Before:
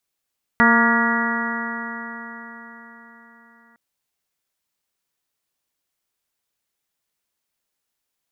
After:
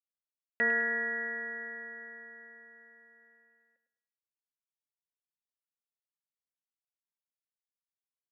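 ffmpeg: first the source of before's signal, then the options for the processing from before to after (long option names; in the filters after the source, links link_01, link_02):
-f lavfi -i "aevalsrc='0.158*pow(10,-3*t/4.52)*sin(2*PI*229.19*t)+0.0501*pow(10,-3*t/4.52)*sin(2*PI*459.55*t)+0.0562*pow(10,-3*t/4.52)*sin(2*PI*692.24*t)+0.1*pow(10,-3*t/4.52)*sin(2*PI*928.37*t)+0.1*pow(10,-3*t/4.52)*sin(2*PI*1169.08*t)+0.126*pow(10,-3*t/4.52)*sin(2*PI*1415.42*t)+0.1*pow(10,-3*t/4.52)*sin(2*PI*1668.43*t)+0.15*pow(10,-3*t/4.52)*sin(2*PI*1929.09*t)':duration=3.16:sample_rate=44100"
-filter_complex "[0:a]agate=range=-33dB:threshold=-48dB:ratio=3:detection=peak,asplit=3[link_01][link_02][link_03];[link_01]bandpass=frequency=530:width_type=q:width=8,volume=0dB[link_04];[link_02]bandpass=frequency=1840:width_type=q:width=8,volume=-6dB[link_05];[link_03]bandpass=frequency=2480:width_type=q:width=8,volume=-9dB[link_06];[link_04][link_05][link_06]amix=inputs=3:normalize=0,asplit=2[link_07][link_08];[link_08]aecho=0:1:103|206|309|412:0.299|0.113|0.0431|0.0164[link_09];[link_07][link_09]amix=inputs=2:normalize=0"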